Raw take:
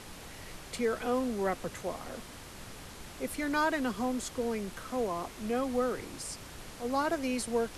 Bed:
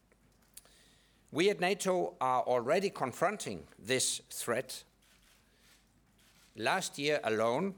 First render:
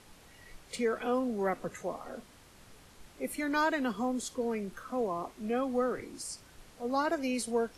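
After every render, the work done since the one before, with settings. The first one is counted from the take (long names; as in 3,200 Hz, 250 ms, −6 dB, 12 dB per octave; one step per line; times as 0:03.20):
noise reduction from a noise print 10 dB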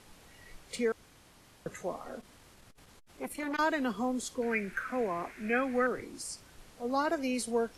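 0:00.92–0:01.66: fill with room tone
0:02.16–0:03.59: saturating transformer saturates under 1,300 Hz
0:04.42–0:05.87: flat-topped bell 1,900 Hz +14.5 dB 1 octave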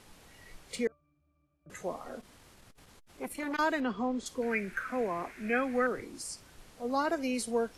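0:00.87–0:01.70: resonances in every octave D, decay 0.34 s
0:03.80–0:04.26: low-pass filter 4,000 Hz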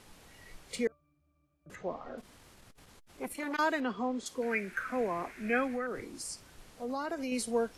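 0:01.75–0:02.18: high-frequency loss of the air 200 metres
0:03.33–0:04.79: low-shelf EQ 120 Hz −10.5 dB
0:05.67–0:07.32: downward compressor 3 to 1, threshold −33 dBFS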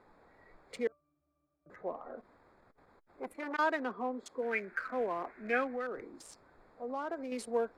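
adaptive Wiener filter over 15 samples
bass and treble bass −12 dB, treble −9 dB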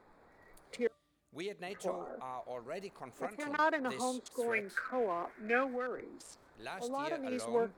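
mix in bed −13 dB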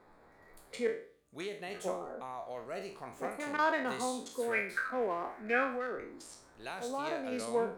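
peak hold with a decay on every bin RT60 0.45 s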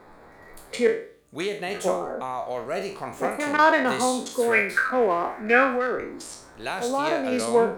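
level +12 dB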